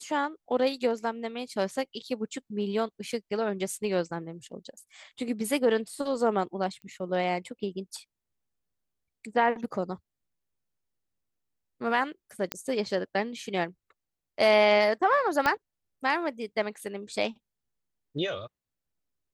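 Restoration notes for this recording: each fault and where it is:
0:03.12: drop-out 3.7 ms
0:06.82: click −34 dBFS
0:12.52: click −12 dBFS
0:15.46: click −11 dBFS

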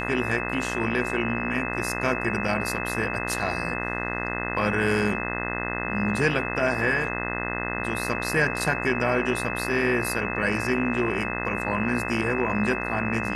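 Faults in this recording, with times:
mains buzz 60 Hz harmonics 35 −31 dBFS
whistle 2,600 Hz −32 dBFS

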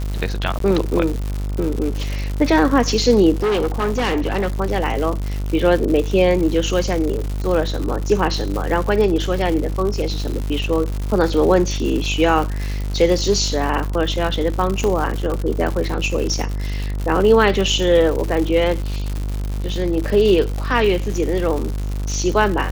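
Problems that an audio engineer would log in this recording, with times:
mains buzz 50 Hz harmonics 30 −23 dBFS
surface crackle 180 per second −23 dBFS
0:00.59–0:00.60: drop-out 13 ms
0:03.36–0:04.48: clipping −15.5 dBFS
0:07.19: drop-out 2.9 ms
0:14.84: click −8 dBFS

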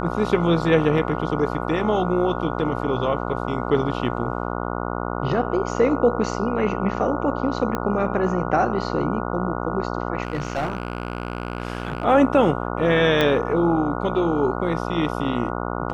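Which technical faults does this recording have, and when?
mains buzz 60 Hz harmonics 24 −27 dBFS
0:00.98: drop-out 2.7 ms
0:07.75: click −11 dBFS
0:10.23–0:12.05: clipping −19.5 dBFS
0:13.21: click −7 dBFS

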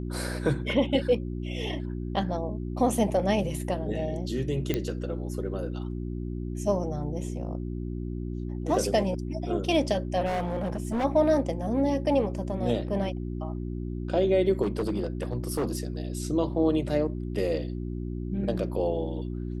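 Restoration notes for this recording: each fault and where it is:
mains hum 60 Hz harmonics 6 −33 dBFS
0:04.74: click −13 dBFS
0:10.25–0:11.05: clipping −25 dBFS
0:14.62–0:15.83: clipping −23 dBFS

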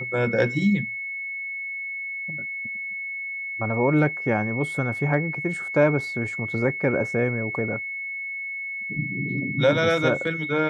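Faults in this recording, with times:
whistle 2,200 Hz −29 dBFS

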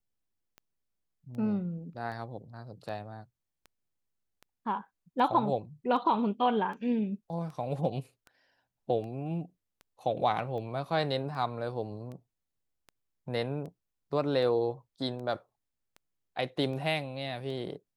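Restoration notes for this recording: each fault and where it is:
scratch tick 78 rpm −33 dBFS

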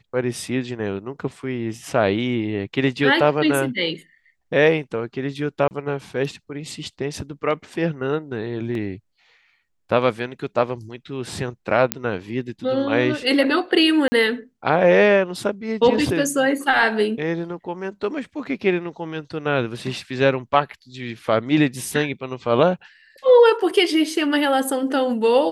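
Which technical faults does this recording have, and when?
0:05.68–0:05.71: drop-out 29 ms
0:08.75: drop-out 2.1 ms
0:11.92: click −1 dBFS
0:14.08–0:14.12: drop-out 40 ms

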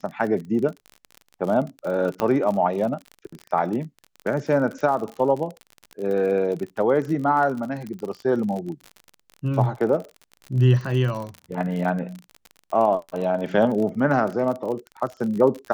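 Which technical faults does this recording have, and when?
surface crackle 39 per second −29 dBFS
0:02.20: click −10 dBFS

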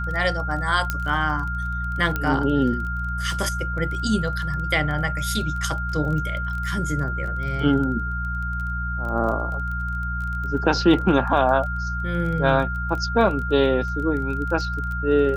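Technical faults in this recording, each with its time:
surface crackle 17 per second −30 dBFS
mains hum 60 Hz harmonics 3 −28 dBFS
whistle 1,400 Hz −28 dBFS
0:00.90: click −9 dBFS
0:02.16: click −11 dBFS

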